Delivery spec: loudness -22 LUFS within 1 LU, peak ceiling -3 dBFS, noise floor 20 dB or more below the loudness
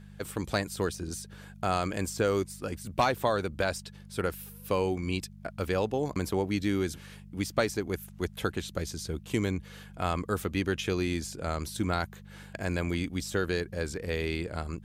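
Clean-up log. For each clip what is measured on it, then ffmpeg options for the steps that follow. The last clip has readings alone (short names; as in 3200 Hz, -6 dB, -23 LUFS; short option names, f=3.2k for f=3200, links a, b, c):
hum 50 Hz; harmonics up to 200 Hz; hum level -47 dBFS; loudness -32.0 LUFS; peak -13.5 dBFS; loudness target -22.0 LUFS
-> -af "bandreject=f=50:t=h:w=4,bandreject=f=100:t=h:w=4,bandreject=f=150:t=h:w=4,bandreject=f=200:t=h:w=4"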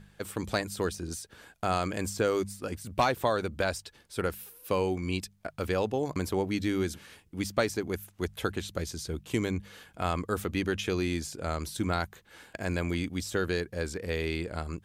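hum none; loudness -32.0 LUFS; peak -13.5 dBFS; loudness target -22.0 LUFS
-> -af "volume=10dB"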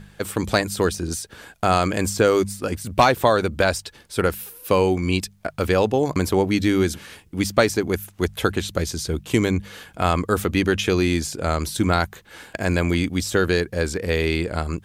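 loudness -22.0 LUFS; peak -3.5 dBFS; noise floor -52 dBFS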